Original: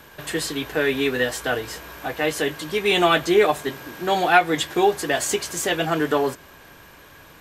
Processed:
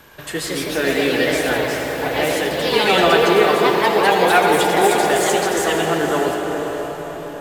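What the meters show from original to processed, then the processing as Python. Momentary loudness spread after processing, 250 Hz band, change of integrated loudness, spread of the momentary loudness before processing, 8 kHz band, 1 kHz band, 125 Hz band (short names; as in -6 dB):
11 LU, +4.5 dB, +5.0 dB, 12 LU, +3.5 dB, +5.5 dB, +4.5 dB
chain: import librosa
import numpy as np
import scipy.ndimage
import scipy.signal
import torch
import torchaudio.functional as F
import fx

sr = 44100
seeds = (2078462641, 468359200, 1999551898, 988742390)

y = fx.echo_pitch(x, sr, ms=196, semitones=2, count=3, db_per_echo=-3.0)
y = fx.echo_diffused(y, sr, ms=538, feedback_pct=43, wet_db=-9.5)
y = fx.rev_freeverb(y, sr, rt60_s=5.0, hf_ratio=0.3, predelay_ms=40, drr_db=2.5)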